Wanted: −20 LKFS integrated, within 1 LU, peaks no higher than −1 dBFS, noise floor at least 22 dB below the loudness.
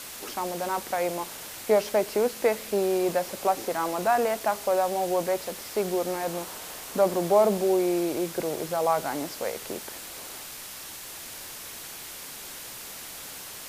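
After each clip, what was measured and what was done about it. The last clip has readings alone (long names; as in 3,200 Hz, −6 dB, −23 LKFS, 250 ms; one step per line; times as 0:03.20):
background noise floor −41 dBFS; target noise floor −50 dBFS; integrated loudness −28.0 LKFS; sample peak −8.5 dBFS; target loudness −20.0 LKFS
→ broadband denoise 9 dB, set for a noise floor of −41 dBFS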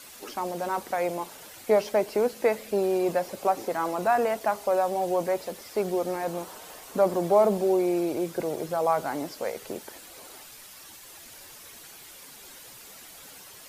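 background noise floor −47 dBFS; target noise floor −49 dBFS
→ broadband denoise 6 dB, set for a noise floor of −47 dBFS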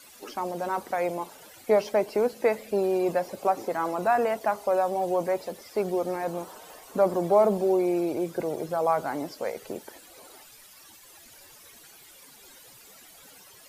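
background noise floor −52 dBFS; integrated loudness −27.0 LKFS; sample peak −8.5 dBFS; target loudness −20.0 LKFS
→ level +7 dB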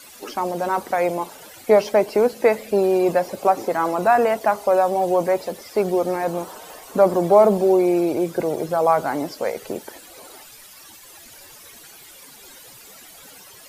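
integrated loudness −20.0 LKFS; sample peak −1.5 dBFS; background noise floor −45 dBFS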